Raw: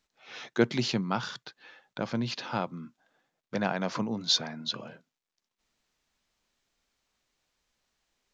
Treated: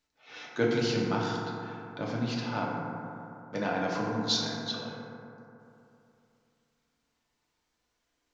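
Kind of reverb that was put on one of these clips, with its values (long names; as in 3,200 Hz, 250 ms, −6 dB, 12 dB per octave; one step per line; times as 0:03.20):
feedback delay network reverb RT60 2.9 s, high-frequency decay 0.3×, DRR −4 dB
level −5 dB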